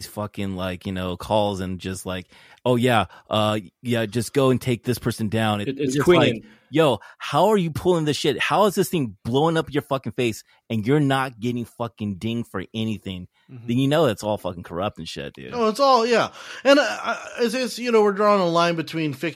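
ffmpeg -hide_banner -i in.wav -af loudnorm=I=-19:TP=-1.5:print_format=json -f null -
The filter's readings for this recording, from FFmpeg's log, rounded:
"input_i" : "-21.9",
"input_tp" : "-3.1",
"input_lra" : "5.0",
"input_thresh" : "-32.1",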